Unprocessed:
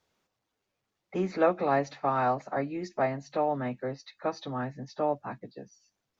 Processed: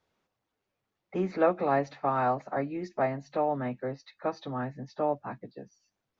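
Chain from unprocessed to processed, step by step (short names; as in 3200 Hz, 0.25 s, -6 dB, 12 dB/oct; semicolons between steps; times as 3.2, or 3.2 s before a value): high shelf 5200 Hz -11.5 dB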